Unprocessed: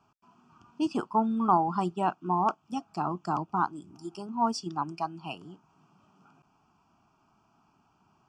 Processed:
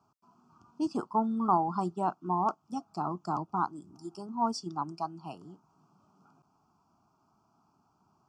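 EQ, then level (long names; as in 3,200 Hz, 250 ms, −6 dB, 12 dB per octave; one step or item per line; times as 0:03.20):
high-pass filter 54 Hz
flat-topped bell 2,300 Hz −12 dB 1.2 octaves
−2.5 dB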